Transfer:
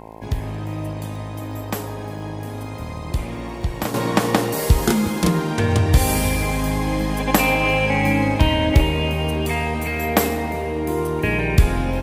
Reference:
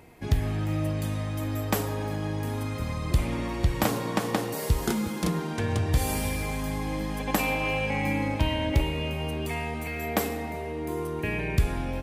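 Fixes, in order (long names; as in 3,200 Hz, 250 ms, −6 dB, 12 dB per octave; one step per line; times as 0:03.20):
click removal
hum removal 54.8 Hz, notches 19
level correction −9 dB, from 0:03.94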